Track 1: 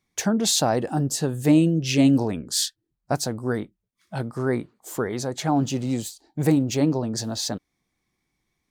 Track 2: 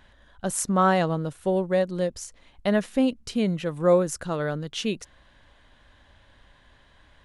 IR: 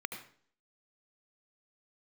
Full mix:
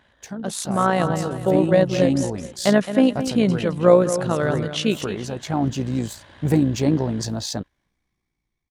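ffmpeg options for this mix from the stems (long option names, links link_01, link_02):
-filter_complex "[0:a]lowshelf=frequency=89:gain=10,asoftclip=type=tanh:threshold=-7.5dB,adelay=50,volume=-9dB[link_01];[1:a]highpass=85,volume=1dB,asplit=2[link_02][link_03];[link_03]volume=-11dB,aecho=0:1:215|430|645|860|1075:1|0.34|0.116|0.0393|0.0134[link_04];[link_01][link_02][link_04]amix=inputs=3:normalize=0,highshelf=frequency=6200:gain=-5,dynaudnorm=framelen=360:gausssize=7:maxgain=12.5dB,tremolo=f=58:d=0.462"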